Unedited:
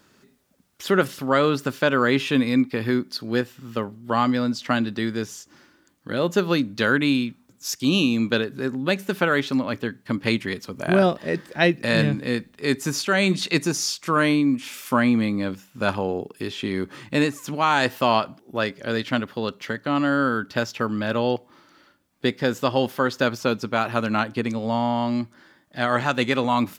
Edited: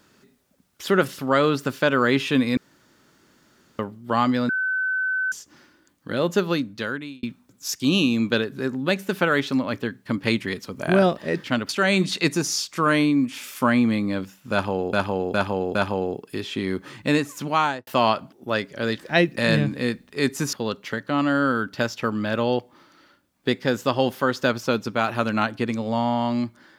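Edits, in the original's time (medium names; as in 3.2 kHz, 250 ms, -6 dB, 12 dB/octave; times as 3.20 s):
2.57–3.79 s: room tone
4.49–5.32 s: bleep 1.52 kHz -21 dBFS
6.34–7.23 s: fade out linear
11.44–12.99 s: swap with 19.05–19.30 s
15.82–16.23 s: loop, 4 plays
17.65–17.94 s: studio fade out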